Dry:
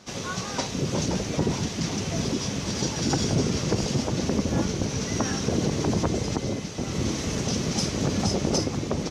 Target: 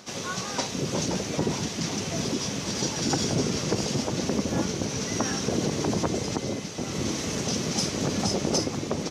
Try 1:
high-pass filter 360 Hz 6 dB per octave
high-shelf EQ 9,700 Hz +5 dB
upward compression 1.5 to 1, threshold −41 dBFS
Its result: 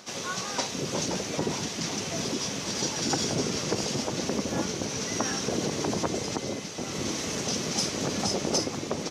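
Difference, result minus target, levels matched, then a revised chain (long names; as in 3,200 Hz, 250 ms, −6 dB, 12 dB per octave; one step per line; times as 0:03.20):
125 Hz band −3.5 dB
high-pass filter 160 Hz 6 dB per octave
high-shelf EQ 9,700 Hz +5 dB
upward compression 1.5 to 1, threshold −41 dBFS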